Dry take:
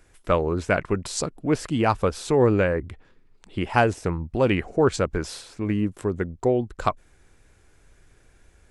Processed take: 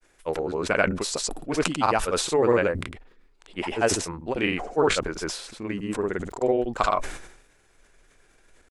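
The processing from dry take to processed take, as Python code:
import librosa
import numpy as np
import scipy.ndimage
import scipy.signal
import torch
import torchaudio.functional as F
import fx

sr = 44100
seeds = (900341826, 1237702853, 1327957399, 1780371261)

y = fx.peak_eq(x, sr, hz=73.0, db=-15.0, octaves=2.7)
y = fx.granulator(y, sr, seeds[0], grain_ms=100.0, per_s=20.0, spray_ms=100.0, spread_st=0)
y = fx.sustainer(y, sr, db_per_s=72.0)
y = y * 10.0 ** (1.5 / 20.0)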